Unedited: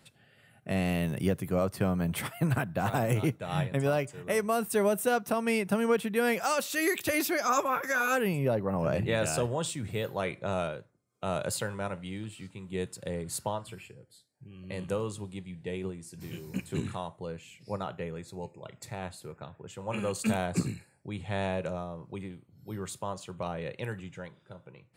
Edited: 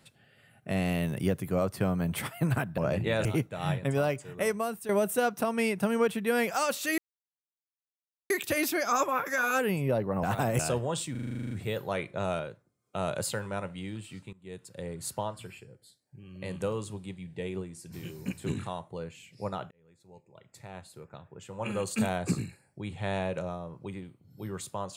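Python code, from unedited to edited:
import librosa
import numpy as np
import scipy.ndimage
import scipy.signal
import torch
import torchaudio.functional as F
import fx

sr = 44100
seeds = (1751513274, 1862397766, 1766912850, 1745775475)

y = fx.edit(x, sr, fx.swap(start_s=2.78, length_s=0.36, other_s=8.8, other_length_s=0.47),
    fx.fade_out_to(start_s=4.36, length_s=0.42, floor_db=-13.5),
    fx.insert_silence(at_s=6.87, length_s=1.32),
    fx.stutter(start_s=9.79, slice_s=0.04, count=11),
    fx.fade_in_from(start_s=12.61, length_s=1.17, curve='qsin', floor_db=-20.0),
    fx.fade_in_span(start_s=17.99, length_s=2.09), tone=tone)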